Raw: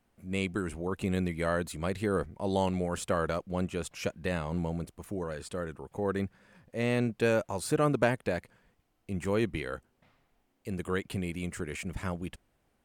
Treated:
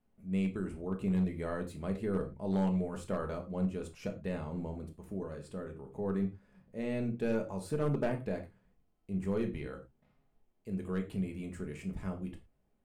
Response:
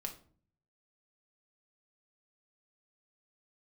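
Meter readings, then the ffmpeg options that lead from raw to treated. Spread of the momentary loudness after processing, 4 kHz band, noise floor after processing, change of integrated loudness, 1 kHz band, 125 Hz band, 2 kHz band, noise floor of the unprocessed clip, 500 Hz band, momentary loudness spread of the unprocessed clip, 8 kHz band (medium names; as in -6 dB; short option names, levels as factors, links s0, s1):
11 LU, -13.0 dB, -74 dBFS, -4.0 dB, -9.0 dB, -2.5 dB, -11.5 dB, -74 dBFS, -5.5 dB, 11 LU, -13.5 dB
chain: -filter_complex "[0:a]aeval=exprs='0.251*(cos(1*acos(clip(val(0)/0.251,-1,1)))-cos(1*PI/2))+0.0224*(cos(2*acos(clip(val(0)/0.251,-1,1)))-cos(2*PI/2))':c=same,tiltshelf=f=860:g=5[s0];[1:a]atrim=start_sample=2205,afade=t=out:st=0.17:d=0.01,atrim=end_sample=7938[s1];[s0][s1]afir=irnorm=-1:irlink=0,asoftclip=type=hard:threshold=0.126,volume=0.473"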